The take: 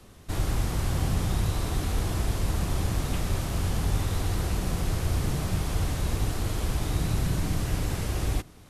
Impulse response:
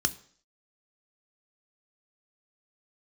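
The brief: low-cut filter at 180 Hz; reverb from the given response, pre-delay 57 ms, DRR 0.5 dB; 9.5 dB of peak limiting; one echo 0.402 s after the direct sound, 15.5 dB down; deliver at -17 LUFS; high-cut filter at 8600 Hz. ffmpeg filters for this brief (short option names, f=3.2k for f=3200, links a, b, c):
-filter_complex "[0:a]highpass=180,lowpass=8.6k,alimiter=level_in=6.5dB:limit=-24dB:level=0:latency=1,volume=-6.5dB,aecho=1:1:402:0.168,asplit=2[a][b];[1:a]atrim=start_sample=2205,adelay=57[c];[b][c]afir=irnorm=-1:irlink=0,volume=-7.5dB[d];[a][d]amix=inputs=2:normalize=0,volume=18dB"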